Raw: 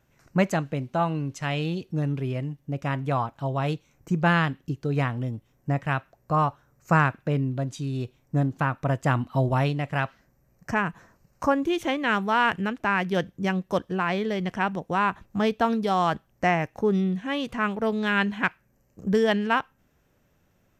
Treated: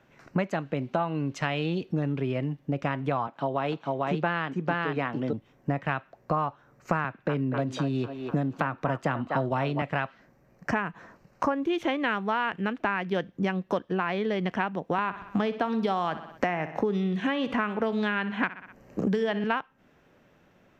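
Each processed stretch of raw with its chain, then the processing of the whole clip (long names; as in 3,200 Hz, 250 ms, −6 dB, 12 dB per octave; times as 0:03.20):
0:03.27–0:05.33: high-pass filter 180 Hz + high-shelf EQ 7,400 Hz −7 dB + single-tap delay 448 ms −3 dB
0:07.04–0:09.82: feedback echo with a band-pass in the loop 248 ms, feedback 53%, band-pass 1,000 Hz, level −8.5 dB + multiband upward and downward compressor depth 40%
0:14.98–0:19.44: repeating echo 62 ms, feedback 40%, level −15.5 dB + multiband upward and downward compressor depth 70%
whole clip: three-way crossover with the lows and the highs turned down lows −12 dB, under 160 Hz, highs −16 dB, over 4,400 Hz; downward compressor 6 to 1, threshold −33 dBFS; level +8.5 dB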